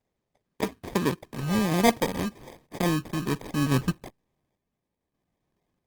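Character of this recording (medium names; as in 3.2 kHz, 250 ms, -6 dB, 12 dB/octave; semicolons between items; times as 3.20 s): phasing stages 12, 1.2 Hz, lowest notch 500–1800 Hz; aliases and images of a low sample rate 1.4 kHz, jitter 0%; random-step tremolo 3.5 Hz; Opus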